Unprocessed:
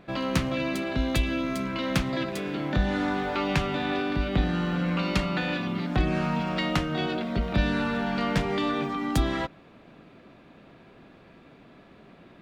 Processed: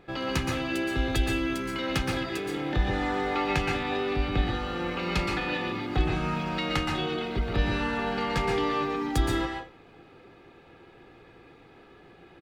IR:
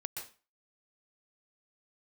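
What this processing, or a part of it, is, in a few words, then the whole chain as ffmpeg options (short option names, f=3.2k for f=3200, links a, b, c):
microphone above a desk: -filter_complex "[0:a]aecho=1:1:2.4:0.55[a];[1:a]atrim=start_sample=2205[b];[a][b]afir=irnorm=-1:irlink=0"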